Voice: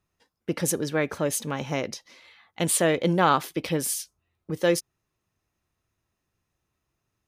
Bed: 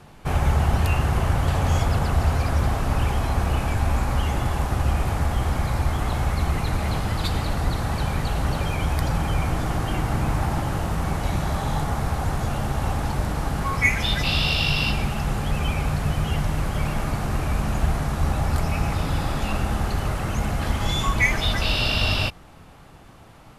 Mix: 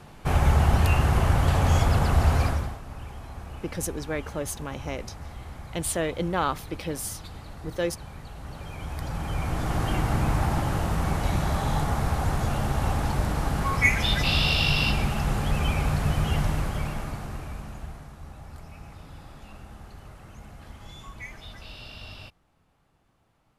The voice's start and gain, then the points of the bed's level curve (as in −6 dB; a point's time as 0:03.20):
3.15 s, −5.5 dB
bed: 0:02.45 0 dB
0:02.81 −17 dB
0:08.36 −17 dB
0:09.83 −1 dB
0:16.46 −1 dB
0:18.20 −20.5 dB